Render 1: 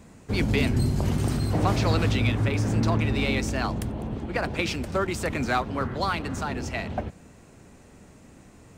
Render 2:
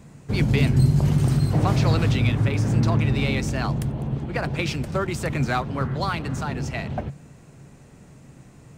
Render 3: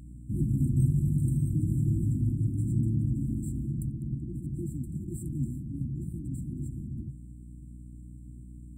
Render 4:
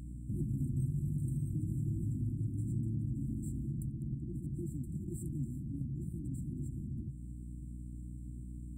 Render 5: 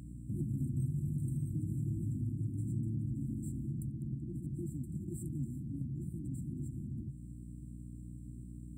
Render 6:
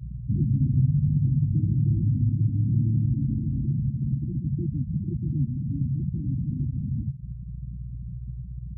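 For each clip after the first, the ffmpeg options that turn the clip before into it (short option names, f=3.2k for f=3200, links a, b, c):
-af "equalizer=f=140:t=o:w=0.35:g=14"
-af "afftfilt=real='re*(1-between(b*sr/4096,360,7300))':imag='im*(1-between(b*sr/4096,360,7300))':win_size=4096:overlap=0.75,aeval=exprs='val(0)+0.0141*(sin(2*PI*60*n/s)+sin(2*PI*2*60*n/s)/2+sin(2*PI*3*60*n/s)/3+sin(2*PI*4*60*n/s)/4+sin(2*PI*5*60*n/s)/5)':c=same,volume=-7dB"
-af "acompressor=threshold=-42dB:ratio=2,volume=1.5dB"
-af "highpass=71"
-af "afftfilt=real='re*gte(hypot(re,im),0.0316)':imag='im*gte(hypot(re,im),0.0316)':win_size=1024:overlap=0.75,bass=f=250:g=10,treble=f=4k:g=1,volume=4.5dB"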